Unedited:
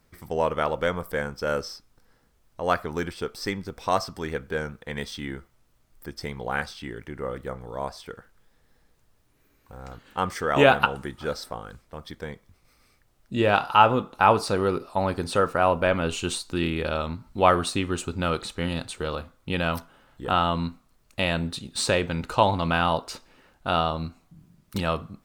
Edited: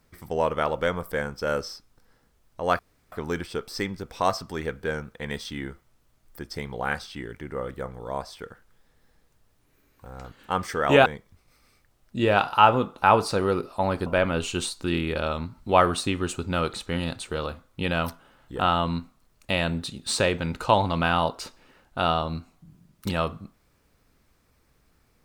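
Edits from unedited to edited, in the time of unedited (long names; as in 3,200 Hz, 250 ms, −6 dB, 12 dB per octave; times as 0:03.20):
0:02.79: splice in room tone 0.33 s
0:10.73–0:12.23: remove
0:15.23–0:15.75: remove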